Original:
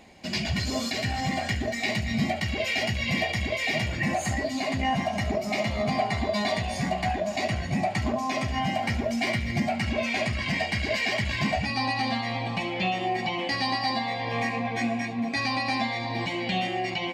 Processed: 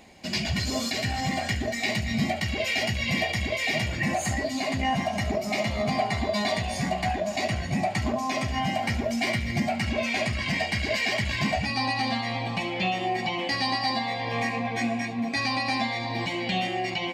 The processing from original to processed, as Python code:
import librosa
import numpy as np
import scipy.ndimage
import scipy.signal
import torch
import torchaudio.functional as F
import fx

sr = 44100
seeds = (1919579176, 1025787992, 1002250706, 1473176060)

y = fx.high_shelf(x, sr, hz=6000.0, db=4.5)